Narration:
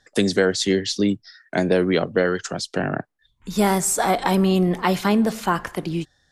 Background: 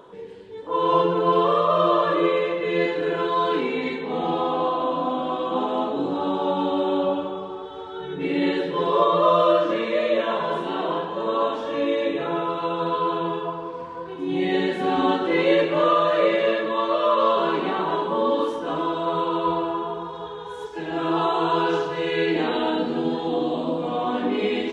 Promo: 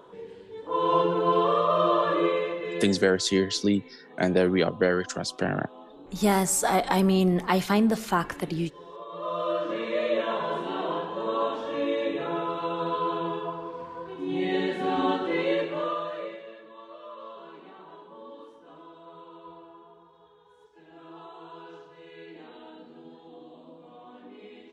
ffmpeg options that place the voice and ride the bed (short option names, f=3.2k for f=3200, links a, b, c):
-filter_complex "[0:a]adelay=2650,volume=-3.5dB[a];[1:a]volume=15dB,afade=t=out:st=2.23:d=0.95:silence=0.105925,afade=t=in:st=9.07:d=0.96:silence=0.11885,afade=t=out:st=15.09:d=1.35:silence=0.112202[b];[a][b]amix=inputs=2:normalize=0"